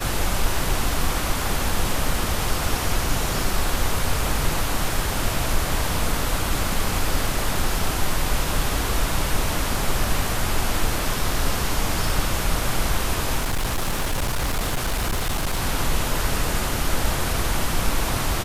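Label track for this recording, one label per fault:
13.370000	15.600000	clipped -19 dBFS

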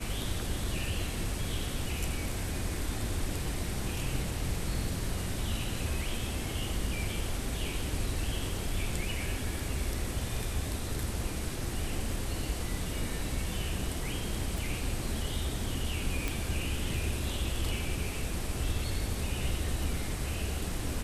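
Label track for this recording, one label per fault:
14.580000	14.580000	pop
16.280000	16.280000	pop

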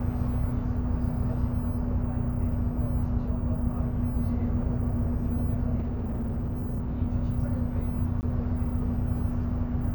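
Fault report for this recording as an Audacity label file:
5.780000	7.000000	clipped -26.5 dBFS
8.210000	8.230000	dropout 19 ms

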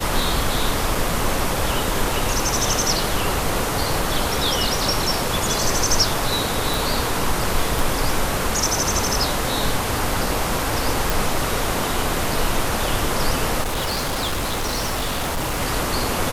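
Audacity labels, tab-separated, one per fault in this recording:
0.950000	0.950000	dropout 2.8 ms
6.740000	6.740000	pop
7.790000	7.790000	pop
11.100000	11.100000	pop
13.610000	15.620000	clipped -20 dBFS

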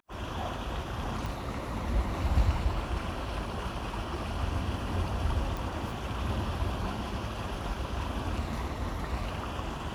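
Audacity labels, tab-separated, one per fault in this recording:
1.260000	1.260000	pop
5.570000	5.570000	pop

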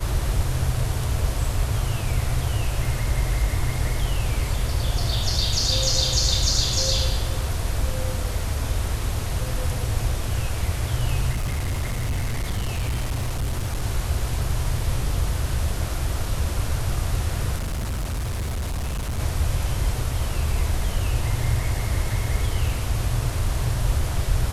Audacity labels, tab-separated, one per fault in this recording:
11.330000	13.840000	clipped -21 dBFS
17.550000	19.200000	clipped -23.5 dBFS

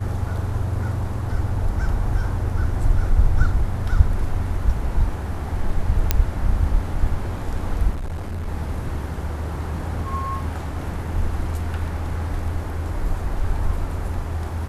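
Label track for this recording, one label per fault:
6.110000	6.110000	pop -2 dBFS
7.920000	8.480000	clipped -24.5 dBFS

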